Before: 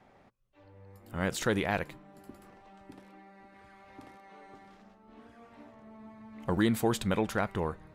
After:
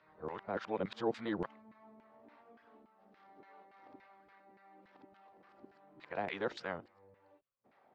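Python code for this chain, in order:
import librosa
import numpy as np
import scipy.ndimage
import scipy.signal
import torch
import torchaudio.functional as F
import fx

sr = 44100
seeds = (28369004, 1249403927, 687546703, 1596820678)

y = x[::-1].copy()
y = fx.ladder_lowpass(y, sr, hz=5800.0, resonance_pct=40)
y = fx.filter_lfo_bandpass(y, sr, shape='saw_down', hz=3.5, low_hz=340.0, high_hz=1900.0, q=1.0)
y = y * librosa.db_to_amplitude(4.5)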